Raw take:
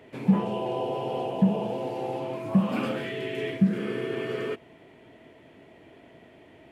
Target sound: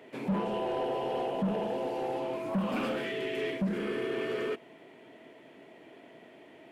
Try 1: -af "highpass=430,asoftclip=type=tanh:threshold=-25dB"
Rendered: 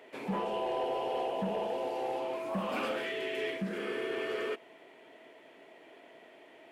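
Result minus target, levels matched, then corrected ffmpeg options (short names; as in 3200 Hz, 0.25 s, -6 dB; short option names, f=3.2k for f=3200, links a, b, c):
250 Hz band -4.0 dB
-af "highpass=210,asoftclip=type=tanh:threshold=-25dB"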